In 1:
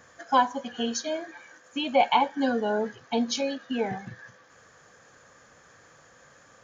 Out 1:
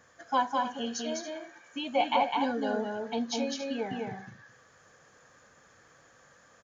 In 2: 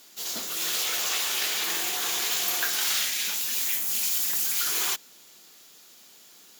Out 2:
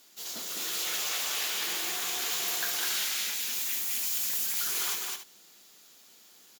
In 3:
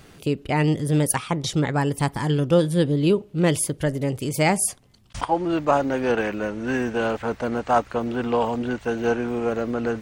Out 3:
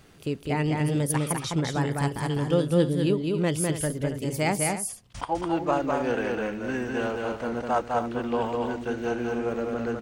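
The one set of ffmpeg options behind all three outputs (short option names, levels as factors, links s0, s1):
-af "aecho=1:1:204.1|277:0.708|0.251,volume=0.501"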